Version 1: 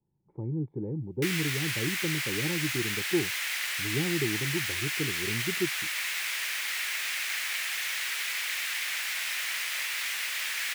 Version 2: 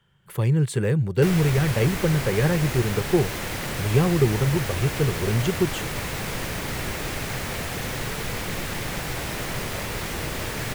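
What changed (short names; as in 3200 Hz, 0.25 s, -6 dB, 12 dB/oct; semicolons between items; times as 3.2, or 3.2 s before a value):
speech: remove vocal tract filter u; background: remove resonant high-pass 2100 Hz, resonance Q 1.5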